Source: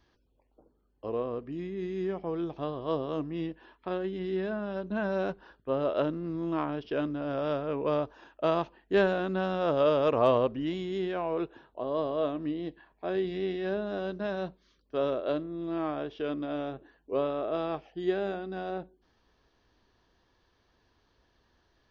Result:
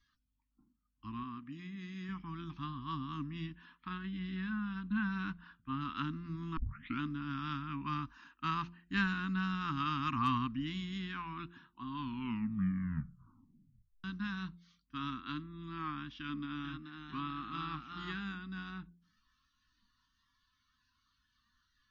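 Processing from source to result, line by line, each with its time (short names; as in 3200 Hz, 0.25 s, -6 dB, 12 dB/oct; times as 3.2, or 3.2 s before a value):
1.23–2.09 low shelf 130 Hz -11.5 dB
2.66–3.2 high shelf 4300 Hz -4.5 dB
3.88–5.81 LPF 4100 Hz
6.57 tape start 0.43 s
7.83–10.6 notch 3400 Hz
11.82 tape stop 2.22 s
16.19–18.22 echoes that change speed 0.445 s, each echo +1 st, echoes 2, each echo -6 dB
whole clip: elliptic band-stop 260–1100 Hz, stop band 60 dB; de-hum 173 Hz, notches 4; spectral noise reduction 11 dB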